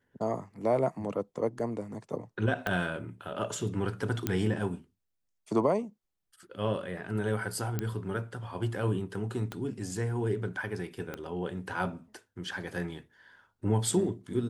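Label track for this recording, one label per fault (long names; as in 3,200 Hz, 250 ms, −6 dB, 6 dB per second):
1.590000	1.590000	drop-out 4.1 ms
2.670000	2.670000	click −17 dBFS
4.270000	4.270000	click −13 dBFS
7.790000	7.790000	click −17 dBFS
9.520000	9.520000	click −22 dBFS
11.140000	11.140000	click −22 dBFS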